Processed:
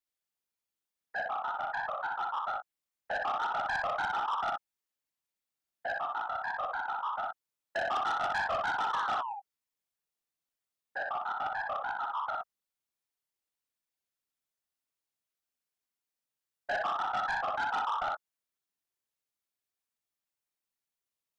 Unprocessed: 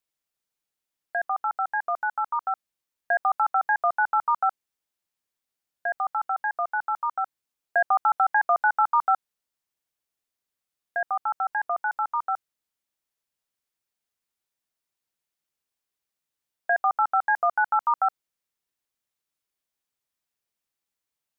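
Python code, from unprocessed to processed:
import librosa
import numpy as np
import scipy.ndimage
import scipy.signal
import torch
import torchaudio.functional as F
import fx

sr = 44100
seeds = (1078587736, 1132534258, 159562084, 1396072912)

y = fx.whisperise(x, sr, seeds[0])
y = fx.spec_paint(y, sr, seeds[1], shape='fall', start_s=8.93, length_s=0.41, low_hz=770.0, high_hz=1800.0, level_db=-31.0)
y = fx.room_early_taps(y, sr, ms=(41, 62, 78), db=(-12.5, -3.5, -14.5))
y = 10.0 ** (-20.0 / 20.0) * np.tanh(y / 10.0 ** (-20.0 / 20.0))
y = y * 10.0 ** (-7.0 / 20.0)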